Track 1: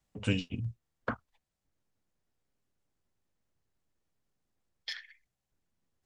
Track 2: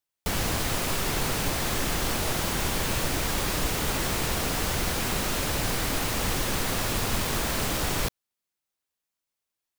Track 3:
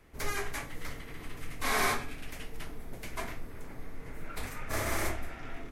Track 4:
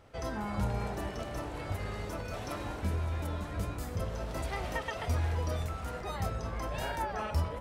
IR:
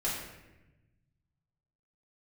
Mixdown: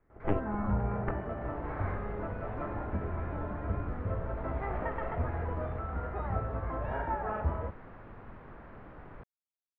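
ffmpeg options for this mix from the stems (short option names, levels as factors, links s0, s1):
-filter_complex "[0:a]lowpass=f=1200:p=1,aeval=exprs='0.158*(cos(1*acos(clip(val(0)/0.158,-1,1)))-cos(1*PI/2))+0.0562*(cos(3*acos(clip(val(0)/0.158,-1,1)))-cos(3*PI/2))+0.0708*(cos(4*acos(clip(val(0)/0.158,-1,1)))-cos(4*PI/2))':c=same,volume=1,asplit=2[s0][s1];[1:a]adelay=1150,volume=0.106[s2];[2:a]volume=0.299[s3];[3:a]adelay=100,volume=0.944,asplit=2[s4][s5];[s5]volume=0.211[s6];[s1]apad=whole_len=251900[s7];[s3][s7]sidechaincompress=threshold=0.00398:ratio=8:attack=16:release=613[s8];[4:a]atrim=start_sample=2205[s9];[s6][s9]afir=irnorm=-1:irlink=0[s10];[s0][s2][s8][s4][s10]amix=inputs=5:normalize=0,lowpass=f=1700:w=0.5412,lowpass=f=1700:w=1.3066"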